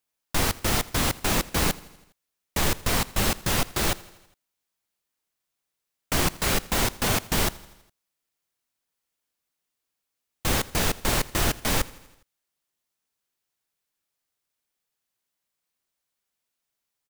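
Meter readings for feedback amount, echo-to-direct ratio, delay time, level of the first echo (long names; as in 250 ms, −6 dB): 60%, −19.0 dB, 82 ms, −21.0 dB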